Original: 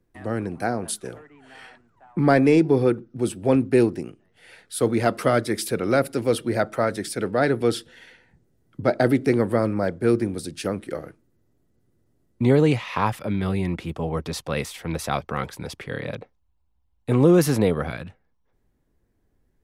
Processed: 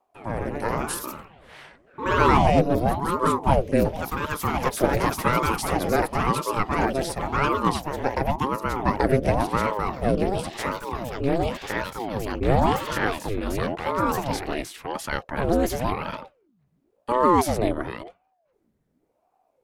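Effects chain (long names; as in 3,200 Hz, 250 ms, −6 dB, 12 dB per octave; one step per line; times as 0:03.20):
delay with pitch and tempo change per echo 149 ms, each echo +2 semitones, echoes 3
ring modulator whose carrier an LFO sweeps 450 Hz, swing 70%, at 0.93 Hz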